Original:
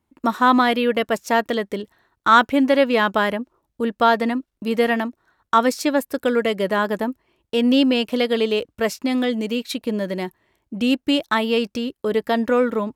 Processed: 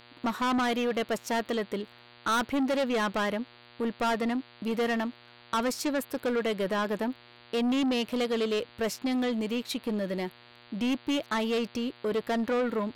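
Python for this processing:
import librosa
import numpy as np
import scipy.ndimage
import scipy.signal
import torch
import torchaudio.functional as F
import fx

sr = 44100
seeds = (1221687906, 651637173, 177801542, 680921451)

y = fx.dmg_buzz(x, sr, base_hz=120.0, harmonics=39, level_db=-50.0, tilt_db=-1, odd_only=False)
y = 10.0 ** (-19.0 / 20.0) * np.tanh(y / 10.0 ** (-19.0 / 20.0))
y = y * librosa.db_to_amplitude(-4.5)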